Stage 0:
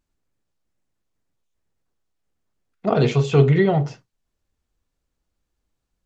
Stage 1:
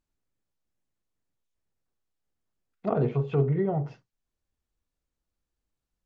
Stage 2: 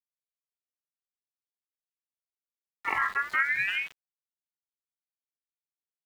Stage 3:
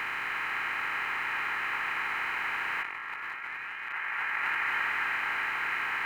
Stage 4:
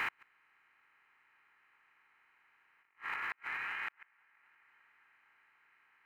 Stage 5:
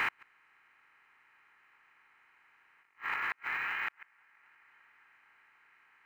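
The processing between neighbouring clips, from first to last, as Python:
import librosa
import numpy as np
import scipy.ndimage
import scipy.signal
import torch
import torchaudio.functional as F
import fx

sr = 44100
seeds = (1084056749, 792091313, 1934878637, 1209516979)

y1 = fx.env_lowpass_down(x, sr, base_hz=1100.0, full_db=-14.5)
y1 = fx.rider(y1, sr, range_db=10, speed_s=0.5)
y1 = y1 * 10.0 ** (-7.5 / 20.0)
y2 = np.where(np.abs(y1) >= 10.0 ** (-39.0 / 20.0), y1, 0.0)
y2 = fx.ring_lfo(y2, sr, carrier_hz=2000.0, swing_pct=25, hz=0.49)
y3 = fx.bin_compress(y2, sr, power=0.2)
y3 = fx.echo_wet_bandpass(y3, sr, ms=248, feedback_pct=71, hz=1200.0, wet_db=-5.0)
y3 = fx.over_compress(y3, sr, threshold_db=-30.0, ratio=-1.0)
y3 = y3 * 10.0 ** (-2.5 / 20.0)
y4 = fx.gate_flip(y3, sr, shuts_db=-24.0, range_db=-37)
y4 = y4 * 10.0 ** (-1.0 / 20.0)
y5 = np.interp(np.arange(len(y4)), np.arange(len(y4))[::2], y4[::2])
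y5 = y5 * 10.0 ** (4.5 / 20.0)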